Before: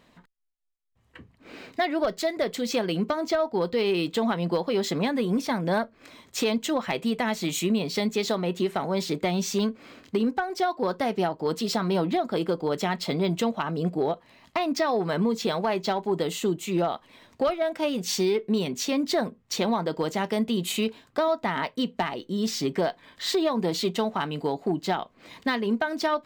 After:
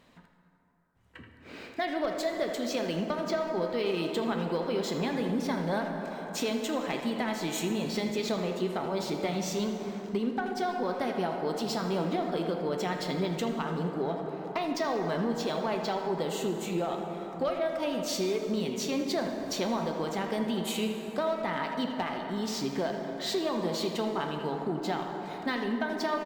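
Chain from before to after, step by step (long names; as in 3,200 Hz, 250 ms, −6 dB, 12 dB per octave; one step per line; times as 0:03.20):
0:19.26–0:19.91: converter with a step at zero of −43 dBFS
far-end echo of a speakerphone 80 ms, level −7 dB
dense smooth reverb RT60 3.8 s, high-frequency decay 0.4×, pre-delay 0 ms, DRR 4 dB
in parallel at +1 dB: downward compressor, threshold −34 dBFS, peak gain reduction 14.5 dB
on the sum: level −8.5 dB
Opus 96 kbit/s 48,000 Hz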